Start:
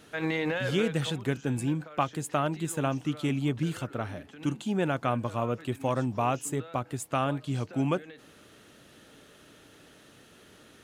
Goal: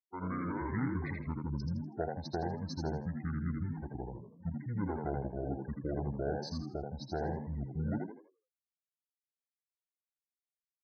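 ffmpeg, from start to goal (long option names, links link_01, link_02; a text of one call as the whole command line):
ffmpeg -i in.wav -filter_complex "[0:a]afftfilt=real='re*gte(hypot(re,im),0.0224)':imag='im*gte(hypot(re,im),0.0224)':win_size=1024:overlap=0.75,asetrate=25476,aresample=44100,atempo=1.73107,asplit=5[link_01][link_02][link_03][link_04][link_05];[link_02]adelay=81,afreqshift=62,volume=-4dB[link_06];[link_03]adelay=162,afreqshift=124,volume=-13.9dB[link_07];[link_04]adelay=243,afreqshift=186,volume=-23.8dB[link_08];[link_05]adelay=324,afreqshift=248,volume=-33.7dB[link_09];[link_01][link_06][link_07][link_08][link_09]amix=inputs=5:normalize=0,volume=-8.5dB" out.wav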